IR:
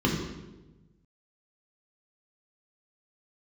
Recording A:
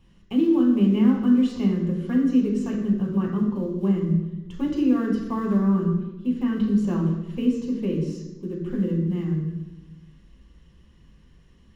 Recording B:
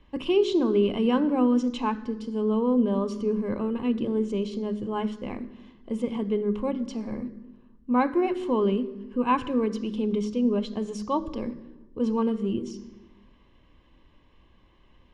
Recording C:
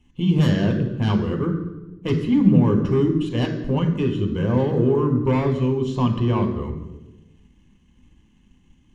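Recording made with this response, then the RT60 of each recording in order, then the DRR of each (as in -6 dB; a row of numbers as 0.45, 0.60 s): A; 1.1, 1.1, 1.1 s; -2.5, 11.0, 3.0 dB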